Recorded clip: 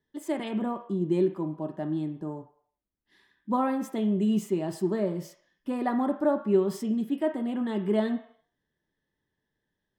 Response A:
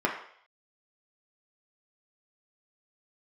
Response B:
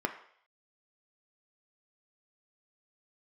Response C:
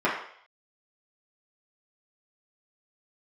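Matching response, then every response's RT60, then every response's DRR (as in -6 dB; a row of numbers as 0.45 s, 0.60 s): B; 0.60 s, 0.60 s, 0.60 s; -1.5 dB, 5.0 dB, -8.5 dB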